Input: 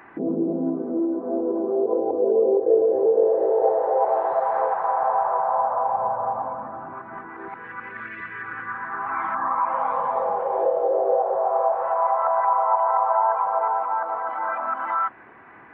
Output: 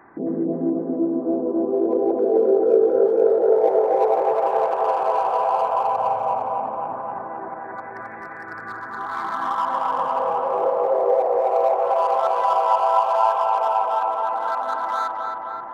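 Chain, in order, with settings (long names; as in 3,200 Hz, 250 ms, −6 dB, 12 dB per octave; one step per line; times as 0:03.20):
adaptive Wiener filter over 15 samples
on a send: tape delay 263 ms, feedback 80%, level −3 dB, low-pass 2,300 Hz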